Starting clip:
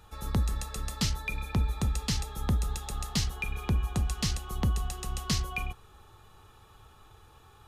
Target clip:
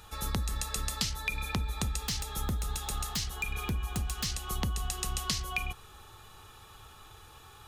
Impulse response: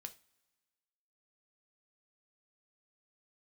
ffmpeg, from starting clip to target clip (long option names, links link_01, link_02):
-filter_complex "[0:a]tiltshelf=frequency=1400:gain=-4,acompressor=threshold=-33dB:ratio=12,asettb=1/sr,asplit=3[link_01][link_02][link_03];[link_01]atrim=end=2.084[link_04];[link_02]atrim=start=2.08:end=4.26,asetpts=PTS-STARTPTS,afade=type=in:duration=0.004:curve=qsin,afade=type=out:start_time=2.176:duration=0.004:curve=qsin,aeval=exprs='0.0335*(abs(mod(val(0)/0.0335+3,4)-2)-1)':channel_layout=same[link_05];[link_03]atrim=start=4.256[link_06];[link_04][link_05]acrossfade=duration=0.004:curve1=hsin:curve2=qsin[link_07];[link_07][link_06]acrossfade=duration=0.004:curve1=qsin:curve2=hsin,volume=5dB"